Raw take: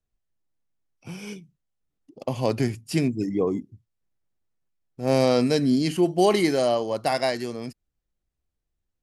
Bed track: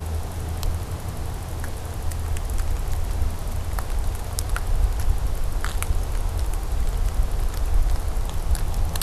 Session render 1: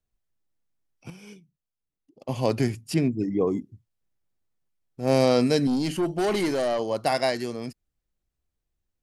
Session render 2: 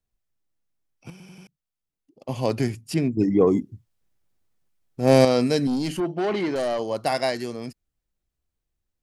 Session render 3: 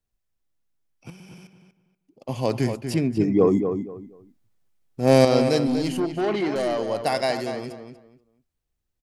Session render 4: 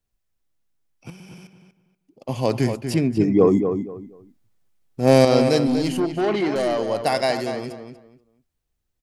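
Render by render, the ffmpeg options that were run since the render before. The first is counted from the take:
ffmpeg -i in.wav -filter_complex "[0:a]asettb=1/sr,asplit=3[link_01][link_02][link_03];[link_01]atrim=end=2.944[link_04];[link_02]atrim=start=2.94:end=3.41,asetpts=PTS-STARTPTS,afade=type=in:duration=0.004:curve=qsin,afade=type=out:start_time=0.466:duration=0.004:curve=qsin,aemphasis=mode=reproduction:type=75kf[link_05];[link_03]atrim=start=3.406[link_06];[link_04][link_05]acrossfade=duration=0.004:curve1=hsin:curve2=qsin[link_07];[link_07][link_06]acrossfade=duration=0.004:curve1=qsin:curve2=hsin,asettb=1/sr,asplit=3[link_08][link_09][link_10];[link_08]atrim=end=5.674[link_11];[link_09]atrim=start=5.67:end=6.79,asetpts=PTS-STARTPTS,afade=type=in:duration=0.004:curve=qsin,afade=type=out:start_time=1.116:duration=0.004:curve=qsin,aeval=exprs='(tanh(10*val(0)+0.2)-tanh(0.2))/10':channel_layout=same[link_12];[link_10]atrim=start=6.786[link_13];[link_11][link_12]acrossfade=duration=0.004:curve1=hsin:curve2=qsin[link_14];[link_14][link_13]acrossfade=duration=0.004:curve1=qsin:curve2=hsin,asplit=3[link_15][link_16][link_17];[link_15]atrim=end=1.102[link_18];[link_16]atrim=start=1.098:end=2.292,asetpts=PTS-STARTPTS,volume=-9dB[link_19];[link_17]atrim=start=2.288[link_20];[link_18][link_19]acrossfade=duration=0.004:curve1=hsin:curve2=hsin[link_21];[link_21][link_20]acrossfade=duration=0.004:curve1=hsin:curve2=hsin" out.wav
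ffmpeg -i in.wav -filter_complex "[0:a]asettb=1/sr,asplit=3[link_01][link_02][link_03];[link_01]atrim=end=3.174[link_04];[link_02]atrim=start=3.17:end=5.25,asetpts=PTS-STARTPTS,afade=type=in:duration=0.004:curve=qsin,afade=type=out:start_time=2.076:duration=0.004:curve=qsin,acontrast=61[link_05];[link_03]atrim=start=5.246[link_06];[link_04][link_05]acrossfade=duration=0.004:curve1=hsin:curve2=qsin[link_07];[link_07][link_06]acrossfade=duration=0.004:curve1=qsin:curve2=hsin,asettb=1/sr,asplit=3[link_08][link_09][link_10];[link_08]atrim=end=6.004[link_11];[link_09]atrim=start=6:end=6.56,asetpts=PTS-STARTPTS,afade=type=in:duration=0.004:curve=qsin,afade=type=out:start_time=0.556:duration=0.004:curve=qsin,highpass=110,lowpass=3400[link_12];[link_10]atrim=start=6.556[link_13];[link_11][link_12]acrossfade=duration=0.004:curve1=hsin:curve2=qsin[link_14];[link_14][link_13]acrossfade=duration=0.004:curve1=qsin:curve2=hsin,asplit=5[link_15][link_16][link_17][link_18][link_19];[link_15]atrim=end=1.202[link_20];[link_16]atrim=start=1.108:end=1.202[link_21];[link_17]atrim=start=1.108:end=1.202[link_22];[link_18]atrim=start=1.108:end=1.202[link_23];[link_19]atrim=start=1.468[link_24];[link_20][link_21]acrossfade=duration=0.004:curve1=hsin:curve2=hsin[link_25];[link_25][link_22]acrossfade=duration=0.004:curve1=hsin:curve2=hsin[link_26];[link_26][link_23]acrossfade=duration=0.004:curve1=hsin:curve2=hsin[link_27];[link_27][link_24]acrossfade=duration=0.004:curve1=hsin:curve2=hsin" out.wav
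ffmpeg -i in.wav -filter_complex "[0:a]asplit=2[link_01][link_02];[link_02]adelay=240,lowpass=frequency=3000:poles=1,volume=-7.5dB,asplit=2[link_03][link_04];[link_04]adelay=240,lowpass=frequency=3000:poles=1,volume=0.24,asplit=2[link_05][link_06];[link_06]adelay=240,lowpass=frequency=3000:poles=1,volume=0.24[link_07];[link_01][link_03][link_05][link_07]amix=inputs=4:normalize=0" out.wav
ffmpeg -i in.wav -af "volume=2.5dB,alimiter=limit=-3dB:level=0:latency=1" out.wav

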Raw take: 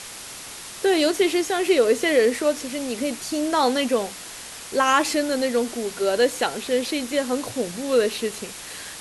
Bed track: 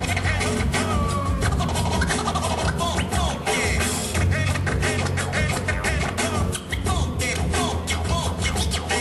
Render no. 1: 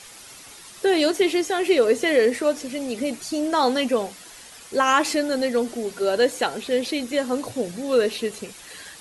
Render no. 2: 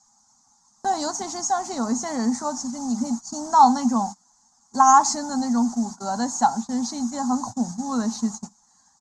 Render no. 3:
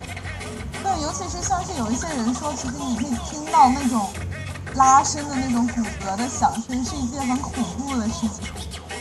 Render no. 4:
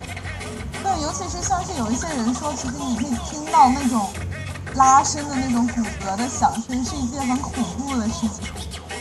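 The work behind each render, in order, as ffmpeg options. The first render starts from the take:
ffmpeg -i in.wav -af "afftdn=noise_reduction=9:noise_floor=-38" out.wav
ffmpeg -i in.wav -af "agate=range=-20dB:threshold=-32dB:ratio=16:detection=peak,firequalizer=gain_entry='entry(150,0);entry(230,11);entry(330,-16);entry(500,-21);entry(810,12);entry(1600,-9);entry(2600,-29);entry(4400,-3);entry(6600,12);entry(10000,-19)':delay=0.05:min_phase=1" out.wav
ffmpeg -i in.wav -i bed.wav -filter_complex "[1:a]volume=-9.5dB[link_01];[0:a][link_01]amix=inputs=2:normalize=0" out.wav
ffmpeg -i in.wav -af "volume=1dB,alimiter=limit=-3dB:level=0:latency=1" out.wav

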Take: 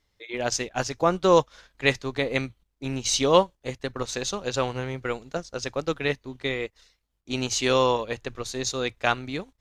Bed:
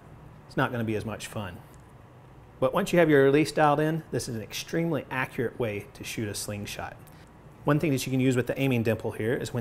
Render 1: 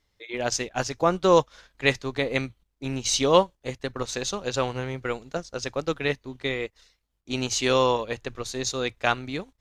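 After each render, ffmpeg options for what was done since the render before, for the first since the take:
ffmpeg -i in.wav -af anull out.wav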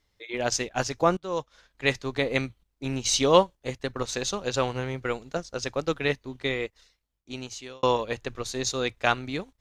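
ffmpeg -i in.wav -filter_complex "[0:a]asplit=3[link_01][link_02][link_03];[link_01]atrim=end=1.17,asetpts=PTS-STARTPTS,afade=type=out:start_time=1.166:duration=0.004:curve=hsin:silence=0.0891251[link_04];[link_02]atrim=start=1.17:end=7.83,asetpts=PTS-STARTPTS,afade=type=in:duration=0.99:silence=0.0891251,afade=type=out:start_time=5.44:duration=1.22[link_05];[link_03]atrim=start=7.83,asetpts=PTS-STARTPTS,afade=type=in:duration=0.004:curve=hsin[link_06];[link_04][link_05][link_06]concat=n=3:v=0:a=1" out.wav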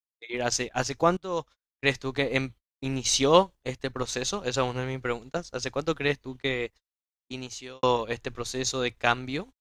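ffmpeg -i in.wav -af "agate=range=-45dB:threshold=-43dB:ratio=16:detection=peak,equalizer=frequency=580:width_type=o:width=0.26:gain=-2.5" out.wav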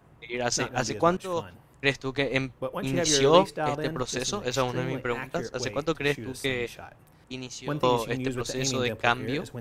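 ffmpeg -i in.wav -i bed.wav -filter_complex "[1:a]volume=-7.5dB[link_01];[0:a][link_01]amix=inputs=2:normalize=0" out.wav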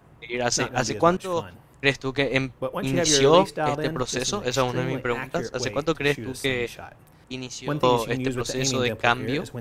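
ffmpeg -i in.wav -af "volume=3.5dB,alimiter=limit=-3dB:level=0:latency=1" out.wav

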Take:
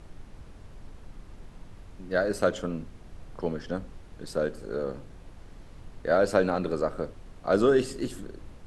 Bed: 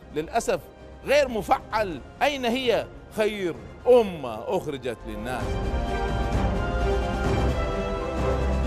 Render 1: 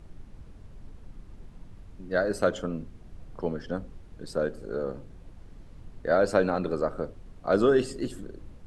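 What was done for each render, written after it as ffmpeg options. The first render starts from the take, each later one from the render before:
ffmpeg -i in.wav -af "afftdn=noise_reduction=6:noise_floor=-48" out.wav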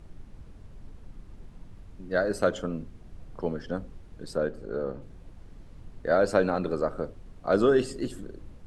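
ffmpeg -i in.wav -filter_complex "[0:a]asettb=1/sr,asplit=3[link_01][link_02][link_03];[link_01]atrim=end=4.374[link_04];[link_02]atrim=start=4.37:end=5.02,asetpts=PTS-STARTPTS,afade=type=in:duration=0.004:curve=qsin,afade=type=out:start_time=0.646:duration=0.004:curve=qsin,highshelf=frequency=6100:gain=-11[link_05];[link_03]atrim=start=5.016[link_06];[link_04][link_05]acrossfade=duration=0.004:curve1=hsin:curve2=qsin[link_07];[link_07][link_06]acrossfade=duration=0.004:curve1=qsin:curve2=hsin" out.wav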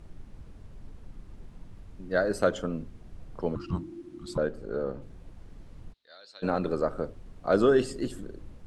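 ffmpeg -i in.wav -filter_complex "[0:a]asettb=1/sr,asplit=3[link_01][link_02][link_03];[link_01]atrim=end=3.554[link_04];[link_02]atrim=start=3.55:end=4.38,asetpts=PTS-STARTPTS,afade=type=in:duration=0.004:curve=qsin,afade=type=out:start_time=0.826:duration=0.004:curve=qsin,afreqshift=-360[link_05];[link_03]atrim=start=4.376[link_06];[link_04][link_05]acrossfade=duration=0.004:curve1=hsin:curve2=qsin[link_07];[link_07][link_06]acrossfade=duration=0.004:curve1=qsin:curve2=hsin,asplit=3[link_08][link_09][link_10];[link_08]afade=type=out:start_time=5.92:duration=0.02[link_11];[link_09]bandpass=frequency=3900:width_type=q:width=6.8,afade=type=in:start_time=5.92:duration=0.02,afade=type=out:start_time=6.42:duration=0.02[link_12];[link_10]afade=type=in:start_time=6.42:duration=0.02[link_13];[link_11][link_12][link_13]amix=inputs=3:normalize=0" out.wav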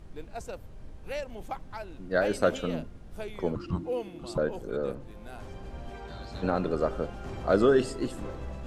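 ffmpeg -i in.wav -i bed.wav -filter_complex "[1:a]volume=-15.5dB[link_01];[0:a][link_01]amix=inputs=2:normalize=0" out.wav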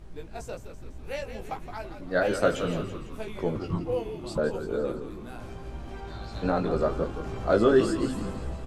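ffmpeg -i in.wav -filter_complex "[0:a]asplit=2[link_01][link_02];[link_02]adelay=18,volume=-4dB[link_03];[link_01][link_03]amix=inputs=2:normalize=0,asplit=8[link_04][link_05][link_06][link_07][link_08][link_09][link_10][link_11];[link_05]adelay=167,afreqshift=-67,volume=-9.5dB[link_12];[link_06]adelay=334,afreqshift=-134,volume=-14.2dB[link_13];[link_07]adelay=501,afreqshift=-201,volume=-19dB[link_14];[link_08]adelay=668,afreqshift=-268,volume=-23.7dB[link_15];[link_09]adelay=835,afreqshift=-335,volume=-28.4dB[link_16];[link_10]adelay=1002,afreqshift=-402,volume=-33.2dB[link_17];[link_11]adelay=1169,afreqshift=-469,volume=-37.9dB[link_18];[link_04][link_12][link_13][link_14][link_15][link_16][link_17][link_18]amix=inputs=8:normalize=0" out.wav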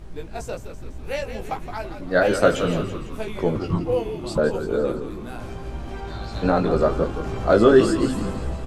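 ffmpeg -i in.wav -af "volume=6.5dB,alimiter=limit=-3dB:level=0:latency=1" out.wav

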